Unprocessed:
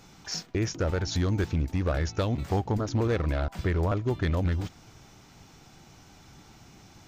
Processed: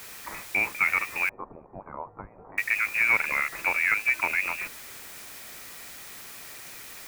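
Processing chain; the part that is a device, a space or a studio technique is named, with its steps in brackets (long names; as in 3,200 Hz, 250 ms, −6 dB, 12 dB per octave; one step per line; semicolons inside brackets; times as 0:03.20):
scrambled radio voice (band-pass filter 330–2,900 Hz; voice inversion scrambler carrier 2,700 Hz; white noise bed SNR 15 dB)
0:01.29–0:02.58: Butterworth low-pass 1,000 Hz 36 dB per octave
level +7 dB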